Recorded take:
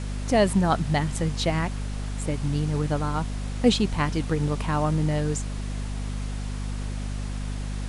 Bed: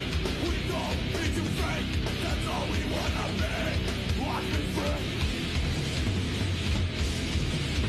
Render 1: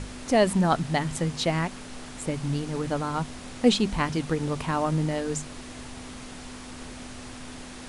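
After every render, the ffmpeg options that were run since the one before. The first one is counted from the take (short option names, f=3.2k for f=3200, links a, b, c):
-af "bandreject=f=50:t=h:w=6,bandreject=f=100:t=h:w=6,bandreject=f=150:t=h:w=6,bandreject=f=200:t=h:w=6"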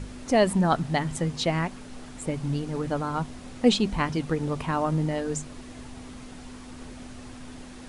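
-af "afftdn=nr=6:nf=-41"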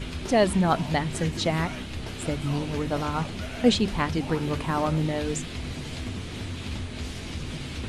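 -filter_complex "[1:a]volume=-6dB[a];[0:a][a]amix=inputs=2:normalize=0"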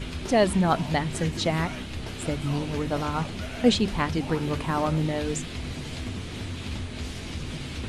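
-af anull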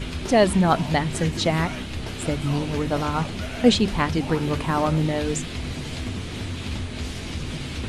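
-af "volume=3.5dB"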